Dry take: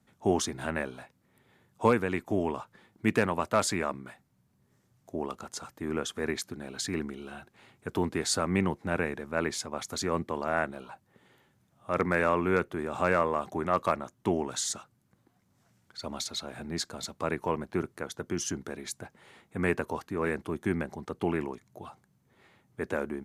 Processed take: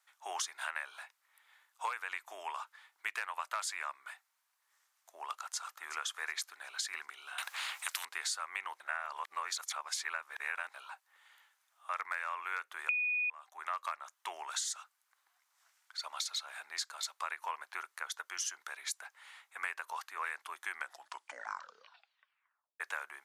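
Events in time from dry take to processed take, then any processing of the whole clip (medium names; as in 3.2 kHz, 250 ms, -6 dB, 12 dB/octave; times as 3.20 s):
5.27–5.93 s: echo throw 370 ms, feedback 40%, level -14 dB
7.38–8.05 s: spectrum-flattening compressor 4:1
8.80–10.74 s: reverse
12.89–13.30 s: bleep 2.47 kHz -7.5 dBFS
20.71 s: tape stop 2.09 s
whole clip: high-pass 1 kHz 24 dB/octave; compression 10:1, threshold -36 dBFS; trim +2.5 dB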